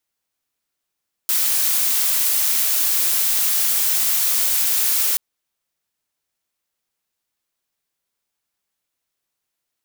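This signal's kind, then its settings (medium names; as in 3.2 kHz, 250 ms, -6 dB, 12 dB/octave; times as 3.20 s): noise blue, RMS -18.5 dBFS 3.88 s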